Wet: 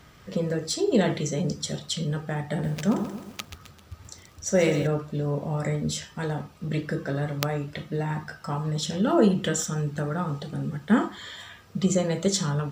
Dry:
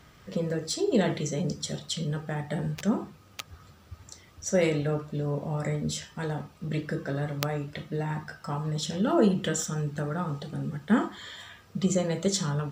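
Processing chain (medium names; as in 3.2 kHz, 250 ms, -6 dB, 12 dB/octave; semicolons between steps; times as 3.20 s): 2.50–4.87 s: bit-crushed delay 131 ms, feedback 55%, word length 8-bit, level -9.5 dB; trim +2.5 dB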